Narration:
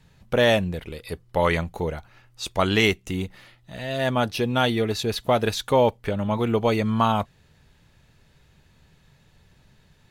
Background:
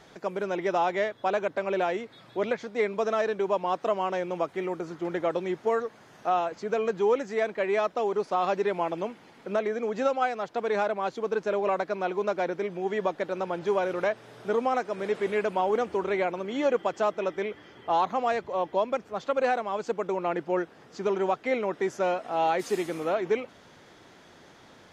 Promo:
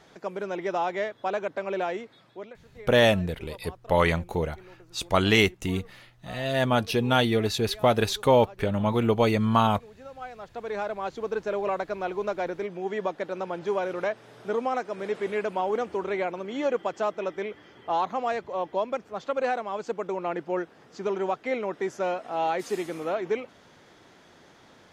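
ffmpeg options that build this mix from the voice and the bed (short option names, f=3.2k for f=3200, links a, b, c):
-filter_complex "[0:a]adelay=2550,volume=-0.5dB[a];[1:a]volume=16dB,afade=t=out:st=1.99:d=0.54:silence=0.133352,afade=t=in:st=10.06:d=1.11:silence=0.125893[b];[a][b]amix=inputs=2:normalize=0"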